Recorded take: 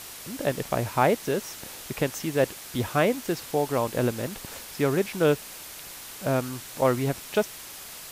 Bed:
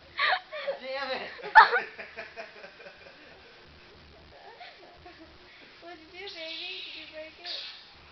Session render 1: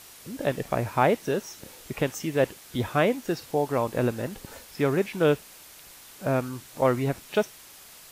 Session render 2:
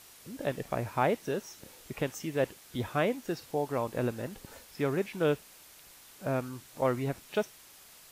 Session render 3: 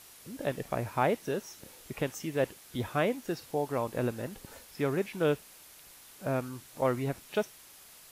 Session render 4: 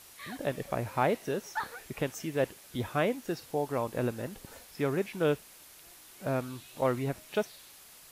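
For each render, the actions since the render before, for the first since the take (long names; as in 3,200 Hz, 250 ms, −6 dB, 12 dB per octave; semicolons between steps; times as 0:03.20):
noise reduction from a noise print 7 dB
level −6 dB
parametric band 11,000 Hz +4 dB 0.25 octaves
mix in bed −19.5 dB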